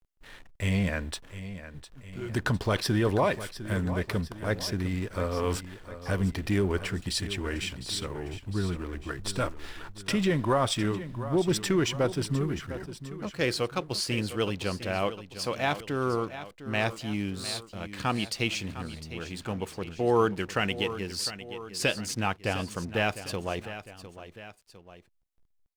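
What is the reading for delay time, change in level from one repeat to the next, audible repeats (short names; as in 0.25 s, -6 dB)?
0.705 s, -5.5 dB, 2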